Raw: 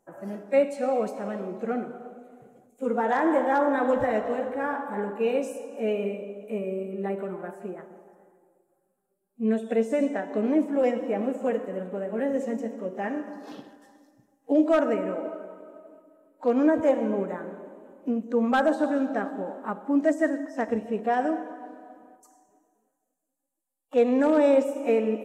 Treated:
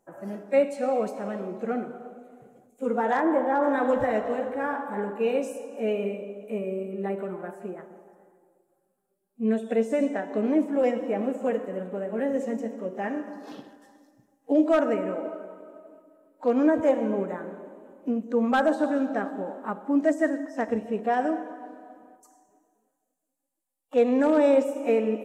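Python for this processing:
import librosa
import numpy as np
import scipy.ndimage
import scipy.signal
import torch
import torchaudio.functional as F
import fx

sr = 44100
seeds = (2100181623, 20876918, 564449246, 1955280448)

y = fx.high_shelf(x, sr, hz=2400.0, db=-11.5, at=(3.2, 3.62), fade=0.02)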